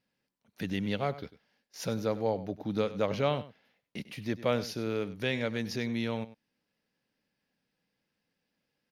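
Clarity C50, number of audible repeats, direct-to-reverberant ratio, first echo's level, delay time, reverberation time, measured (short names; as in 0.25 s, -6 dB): none, 1, none, -16.0 dB, 98 ms, none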